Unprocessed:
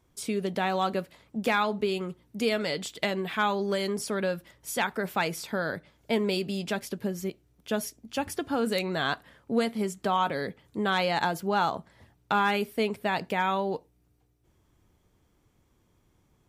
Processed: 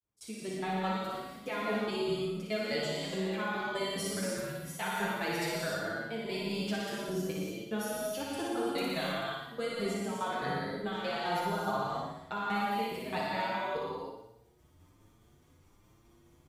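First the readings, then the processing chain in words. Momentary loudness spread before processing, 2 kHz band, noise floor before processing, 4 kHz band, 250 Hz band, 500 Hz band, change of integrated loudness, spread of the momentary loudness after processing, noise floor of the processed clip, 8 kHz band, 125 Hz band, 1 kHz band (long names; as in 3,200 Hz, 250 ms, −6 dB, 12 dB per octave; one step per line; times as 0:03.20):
8 LU, −5.5 dB, −68 dBFS, −4.5 dB, −5.0 dB, −5.0 dB, −5.5 dB, 5 LU, −63 dBFS, −3.0 dB, −3.5 dB, −6.0 dB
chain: fade in at the beginning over 0.96 s
reversed playback
downward compressor 6 to 1, threshold −35 dBFS, peak gain reduction 14 dB
reversed playback
shaped tremolo saw down 4.8 Hz, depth 100%
on a send: flutter between parallel walls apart 10 metres, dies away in 0.81 s
on the sum: reverb whose tail is shaped and stops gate 340 ms flat, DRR −4 dB
barber-pole flanger 7.2 ms +1.2 Hz
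level +5 dB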